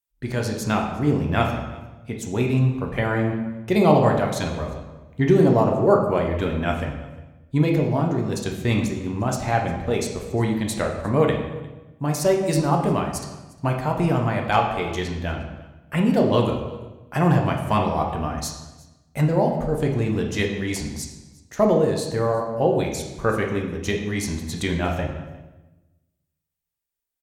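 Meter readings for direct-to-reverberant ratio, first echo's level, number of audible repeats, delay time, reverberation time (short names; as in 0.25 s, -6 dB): 1.0 dB, -22.5 dB, 1, 0.354 s, 1.1 s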